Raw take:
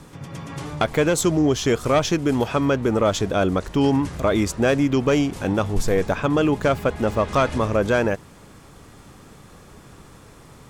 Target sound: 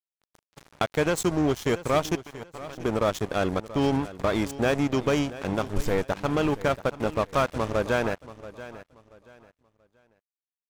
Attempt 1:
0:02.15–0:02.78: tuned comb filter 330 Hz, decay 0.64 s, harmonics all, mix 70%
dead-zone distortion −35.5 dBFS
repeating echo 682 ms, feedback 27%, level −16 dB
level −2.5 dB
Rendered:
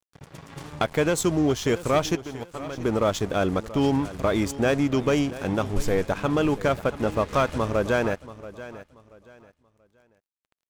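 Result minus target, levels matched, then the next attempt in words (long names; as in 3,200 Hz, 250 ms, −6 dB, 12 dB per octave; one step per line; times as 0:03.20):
dead-zone distortion: distortion −8 dB
0:02.15–0:02.78: tuned comb filter 330 Hz, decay 0.64 s, harmonics all, mix 70%
dead-zone distortion −26.5 dBFS
repeating echo 682 ms, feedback 27%, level −16 dB
level −2.5 dB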